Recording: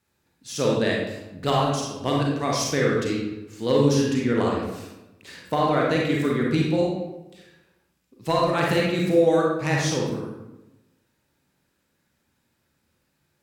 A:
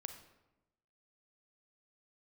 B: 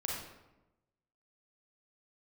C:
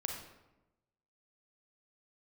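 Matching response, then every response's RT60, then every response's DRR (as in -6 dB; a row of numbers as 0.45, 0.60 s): B; 1.0, 1.0, 1.0 s; 7.0, -3.0, 1.5 dB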